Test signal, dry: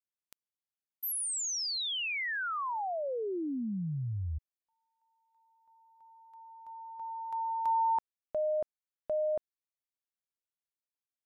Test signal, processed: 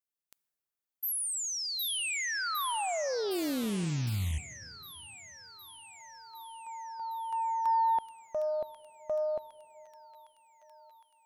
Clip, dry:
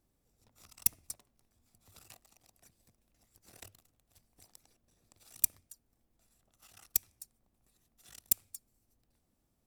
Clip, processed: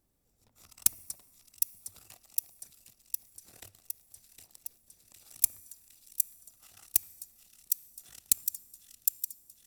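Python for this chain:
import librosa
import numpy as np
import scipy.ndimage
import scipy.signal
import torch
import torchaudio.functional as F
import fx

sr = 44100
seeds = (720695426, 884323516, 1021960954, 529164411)

y = fx.high_shelf(x, sr, hz=9200.0, db=8.0)
y = fx.rider(y, sr, range_db=4, speed_s=2.0)
y = fx.echo_wet_highpass(y, sr, ms=760, feedback_pct=68, hz=2600.0, wet_db=-4.0)
y = fx.rev_plate(y, sr, seeds[0], rt60_s=3.2, hf_ratio=0.45, predelay_ms=0, drr_db=19.0)
y = fx.doppler_dist(y, sr, depth_ms=0.66)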